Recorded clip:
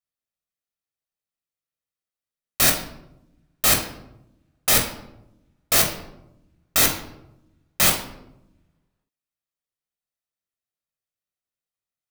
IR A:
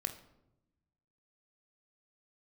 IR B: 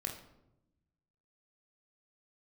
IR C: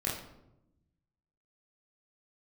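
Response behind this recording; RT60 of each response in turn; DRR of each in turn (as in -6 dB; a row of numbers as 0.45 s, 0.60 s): B; 0.90 s, 0.90 s, 0.90 s; 6.5 dB, 1.0 dB, -6.0 dB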